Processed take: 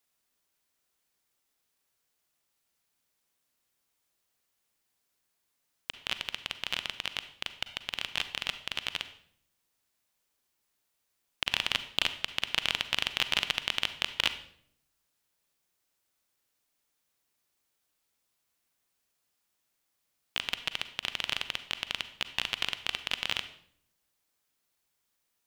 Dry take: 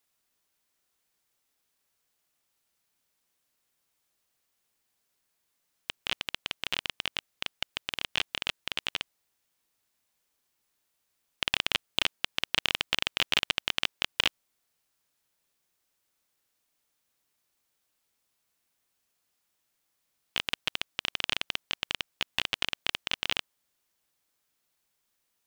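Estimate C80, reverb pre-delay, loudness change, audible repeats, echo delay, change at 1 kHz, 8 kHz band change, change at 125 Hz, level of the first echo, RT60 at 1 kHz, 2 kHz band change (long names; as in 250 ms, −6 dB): 15.5 dB, 36 ms, −1.0 dB, no echo audible, no echo audible, −1.5 dB, −1.0 dB, −1.0 dB, no echo audible, 0.55 s, −1.0 dB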